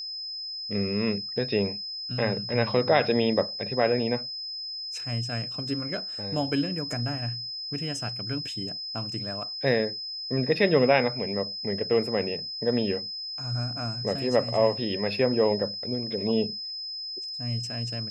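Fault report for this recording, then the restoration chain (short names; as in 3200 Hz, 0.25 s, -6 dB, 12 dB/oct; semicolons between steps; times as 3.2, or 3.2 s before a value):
tone 5100 Hz -33 dBFS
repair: notch 5100 Hz, Q 30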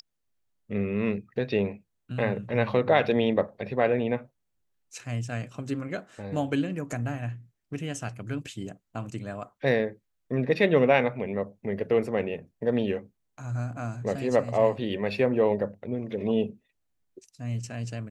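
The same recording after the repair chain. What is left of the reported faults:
none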